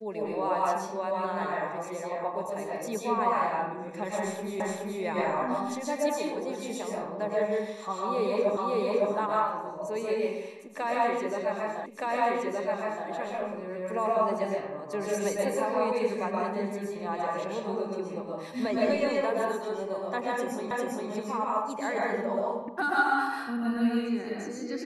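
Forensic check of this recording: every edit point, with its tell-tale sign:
4.60 s: repeat of the last 0.42 s
8.57 s: repeat of the last 0.56 s
11.86 s: repeat of the last 1.22 s
20.71 s: repeat of the last 0.4 s

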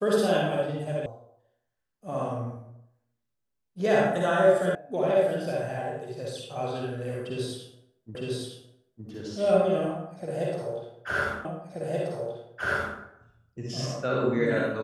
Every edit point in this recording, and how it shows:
1.06 s: sound stops dead
4.75 s: sound stops dead
8.15 s: repeat of the last 0.91 s
11.45 s: repeat of the last 1.53 s

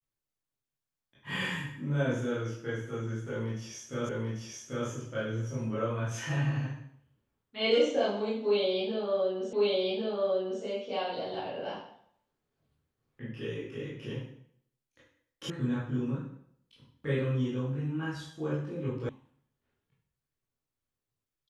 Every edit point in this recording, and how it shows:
4.09 s: repeat of the last 0.79 s
9.53 s: repeat of the last 1.1 s
15.50 s: sound stops dead
19.09 s: sound stops dead

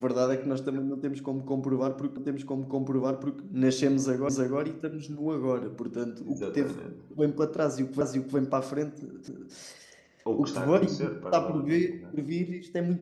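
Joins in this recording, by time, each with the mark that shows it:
2.17 s: repeat of the last 1.23 s
4.29 s: repeat of the last 0.31 s
8.01 s: repeat of the last 0.36 s
9.28 s: repeat of the last 0.26 s

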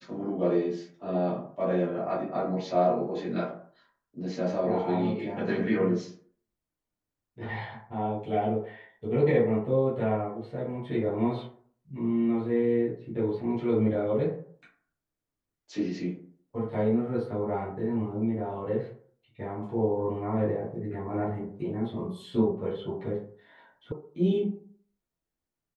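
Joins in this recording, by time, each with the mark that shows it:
23.92 s: sound stops dead

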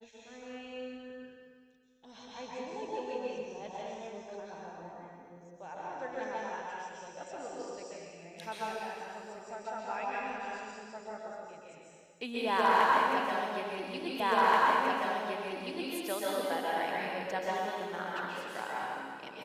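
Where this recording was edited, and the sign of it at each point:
14.20 s: repeat of the last 1.73 s

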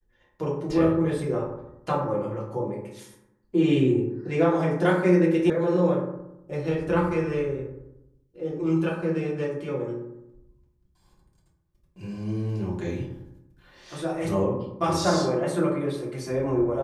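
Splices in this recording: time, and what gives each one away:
5.50 s: sound stops dead

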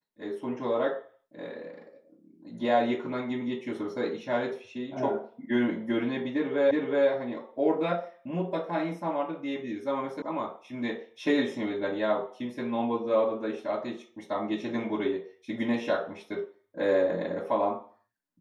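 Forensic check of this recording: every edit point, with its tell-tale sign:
6.71 s: repeat of the last 0.37 s
10.22 s: sound stops dead

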